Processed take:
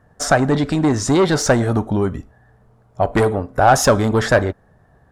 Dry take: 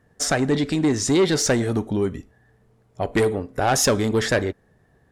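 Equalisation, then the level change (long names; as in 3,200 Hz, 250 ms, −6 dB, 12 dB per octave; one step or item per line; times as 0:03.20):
low-shelf EQ 220 Hz +8.5 dB
flat-topped bell 940 Hz +8.5 dB
0.0 dB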